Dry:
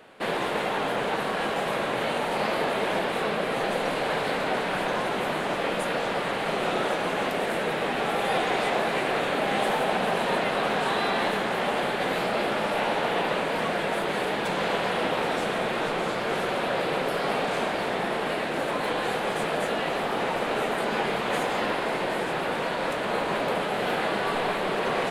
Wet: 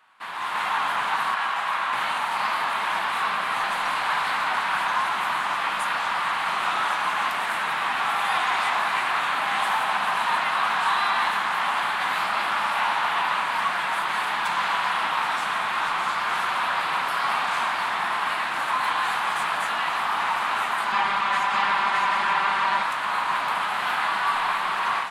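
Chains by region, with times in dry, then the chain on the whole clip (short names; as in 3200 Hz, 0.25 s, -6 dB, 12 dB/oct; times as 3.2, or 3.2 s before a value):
1.34–1.93 LPF 1800 Hz 6 dB/oct + tilt +2.5 dB/oct
20.92–22.83 air absorption 52 m + comb 5.1 ms, depth 89% + echo 0.612 s -3 dB
whole clip: resonant low shelf 710 Hz -13 dB, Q 3; AGC gain up to 11.5 dB; gain -8.5 dB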